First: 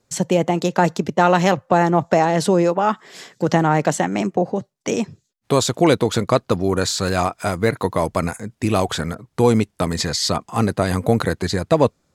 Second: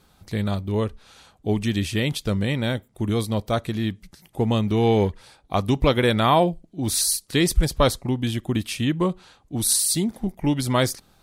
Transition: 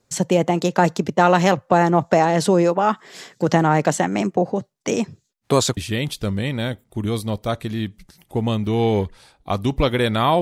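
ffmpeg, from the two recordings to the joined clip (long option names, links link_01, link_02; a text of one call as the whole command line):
ffmpeg -i cue0.wav -i cue1.wav -filter_complex "[0:a]apad=whole_dur=10.41,atrim=end=10.41,atrim=end=5.772[link_01];[1:a]atrim=start=1.808:end=6.45[link_02];[link_01][link_02]acrossfade=duration=0.004:curve1=hsin:curve2=hsin" out.wav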